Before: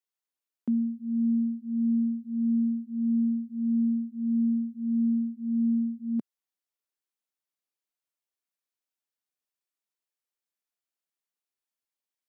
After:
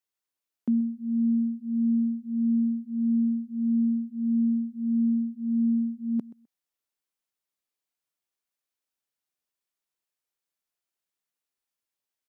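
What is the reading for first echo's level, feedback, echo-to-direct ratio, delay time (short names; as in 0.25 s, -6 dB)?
-19.0 dB, 17%, -19.0 dB, 0.128 s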